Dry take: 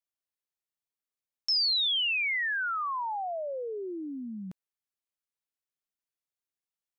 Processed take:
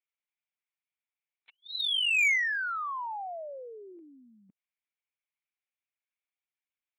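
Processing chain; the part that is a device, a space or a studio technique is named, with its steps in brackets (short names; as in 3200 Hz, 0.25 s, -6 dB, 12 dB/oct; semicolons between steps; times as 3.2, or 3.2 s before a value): talking toy (LPC vocoder at 8 kHz pitch kept; HPF 620 Hz 12 dB/oct; bell 2300 Hz +12 dB 0.44 oct; soft clip -17.5 dBFS, distortion -15 dB); gain -2.5 dB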